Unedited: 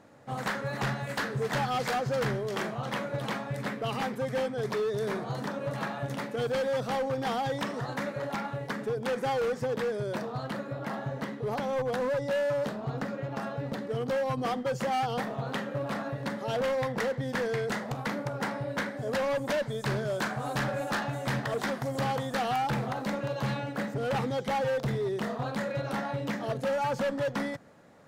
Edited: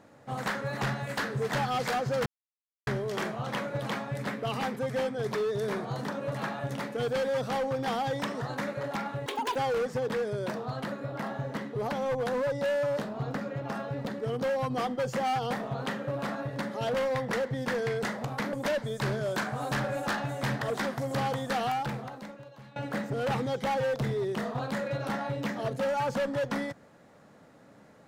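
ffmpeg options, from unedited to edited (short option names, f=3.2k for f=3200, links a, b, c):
-filter_complex "[0:a]asplit=6[a][b][c][d][e][f];[a]atrim=end=2.26,asetpts=PTS-STARTPTS,afade=t=out:st=2.256:d=0.004:c=hsin,apad=pad_dur=0.61[g];[b]atrim=start=2.26:end=8.654,asetpts=PTS-STARTPTS,afade=t=in:d=0.004:c=hsin[h];[c]atrim=start=8.65:end=9.23,asetpts=PTS-STARTPTS,asetrate=85554,aresample=44100[i];[d]atrim=start=9.226:end=18.202[j];[e]atrim=start=19.368:end=23.6,asetpts=PTS-STARTPTS,afade=t=out:st=3.112:d=1.12:c=qua:silence=0.0944061[k];[f]atrim=start=23.6,asetpts=PTS-STARTPTS,afade=t=in:d=0.004:c=hsin:silence=0.0944061[l];[g][h]concat=n=2:v=0:a=1[m];[m][i]acrossfade=d=0.004:c1=hsin:c2=hsin[n];[n][j]acrossfade=d=0.004:c1=hsin:c2=hsin[o];[k][l]concat=n=2:v=0:a=1[p];[o][p]acrossfade=d=0.004:c1=hsin:c2=hsin"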